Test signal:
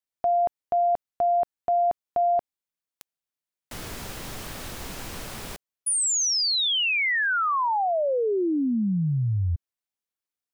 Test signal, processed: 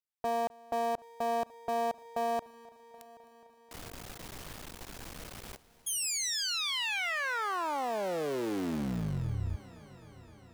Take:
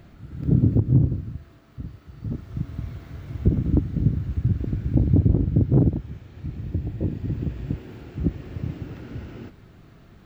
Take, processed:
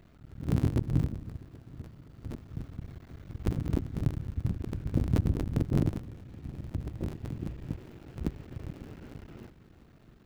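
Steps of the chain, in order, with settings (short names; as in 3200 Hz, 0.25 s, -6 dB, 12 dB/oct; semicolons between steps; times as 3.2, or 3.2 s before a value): cycle switcher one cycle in 3, muted; multi-head echo 0.259 s, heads first and third, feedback 68%, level -23 dB; gain -7.5 dB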